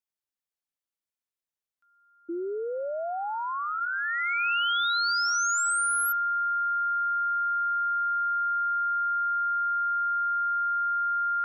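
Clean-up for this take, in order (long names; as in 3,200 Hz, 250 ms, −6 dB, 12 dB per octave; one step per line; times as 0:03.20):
notch filter 1,400 Hz, Q 30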